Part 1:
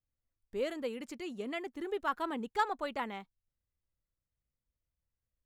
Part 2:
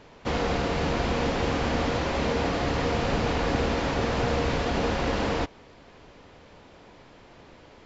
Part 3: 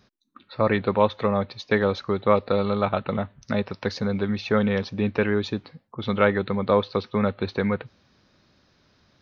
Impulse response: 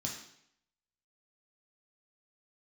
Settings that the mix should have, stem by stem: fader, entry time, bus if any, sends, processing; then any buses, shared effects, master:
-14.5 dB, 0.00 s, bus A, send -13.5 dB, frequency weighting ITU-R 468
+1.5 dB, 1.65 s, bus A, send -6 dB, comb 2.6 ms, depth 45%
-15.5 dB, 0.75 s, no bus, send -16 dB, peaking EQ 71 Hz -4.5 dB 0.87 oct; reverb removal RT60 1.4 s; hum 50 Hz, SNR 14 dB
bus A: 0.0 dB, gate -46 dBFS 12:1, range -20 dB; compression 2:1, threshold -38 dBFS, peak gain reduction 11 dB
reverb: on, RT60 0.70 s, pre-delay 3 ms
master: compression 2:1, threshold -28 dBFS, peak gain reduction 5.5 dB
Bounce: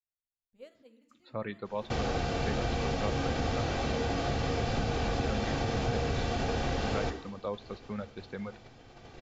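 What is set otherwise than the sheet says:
stem 1: missing frequency weighting ITU-R 468; stem 2: send -6 dB -> -12 dB; stem 3: missing hum 50 Hz, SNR 14 dB

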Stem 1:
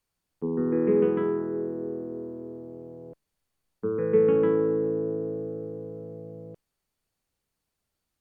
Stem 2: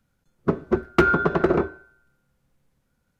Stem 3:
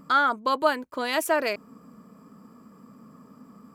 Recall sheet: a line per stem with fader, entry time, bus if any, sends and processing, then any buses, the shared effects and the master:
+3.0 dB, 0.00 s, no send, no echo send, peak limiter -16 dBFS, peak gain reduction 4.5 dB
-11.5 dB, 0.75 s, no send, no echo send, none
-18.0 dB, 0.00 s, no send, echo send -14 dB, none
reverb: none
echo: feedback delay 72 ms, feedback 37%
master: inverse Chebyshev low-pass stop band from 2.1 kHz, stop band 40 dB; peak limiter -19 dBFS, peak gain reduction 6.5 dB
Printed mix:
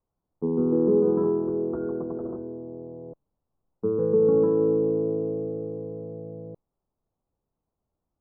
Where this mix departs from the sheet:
stem 2 -11.5 dB -> -18.5 dB; stem 3: muted; master: missing peak limiter -19 dBFS, peak gain reduction 6.5 dB

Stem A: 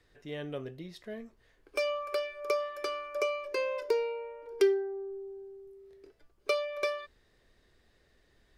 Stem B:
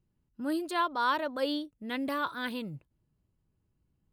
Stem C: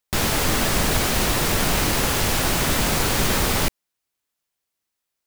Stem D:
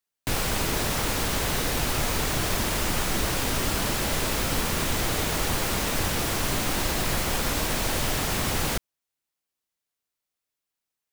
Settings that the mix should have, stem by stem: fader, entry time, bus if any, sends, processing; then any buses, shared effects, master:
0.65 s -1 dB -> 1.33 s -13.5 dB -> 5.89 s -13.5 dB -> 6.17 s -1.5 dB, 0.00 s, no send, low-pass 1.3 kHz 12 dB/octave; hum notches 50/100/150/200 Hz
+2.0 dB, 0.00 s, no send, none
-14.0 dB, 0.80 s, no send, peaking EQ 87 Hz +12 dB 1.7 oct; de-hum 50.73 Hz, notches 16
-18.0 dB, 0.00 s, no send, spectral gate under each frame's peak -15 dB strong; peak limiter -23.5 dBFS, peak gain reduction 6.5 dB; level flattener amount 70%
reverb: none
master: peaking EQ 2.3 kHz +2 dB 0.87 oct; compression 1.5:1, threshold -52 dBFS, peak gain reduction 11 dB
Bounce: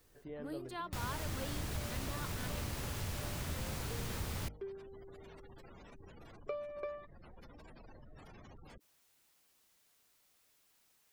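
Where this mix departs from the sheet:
stem B +2.0 dB -> -6.5 dB; stem D -18.0 dB -> -25.5 dB; master: missing peaking EQ 2.3 kHz +2 dB 0.87 oct

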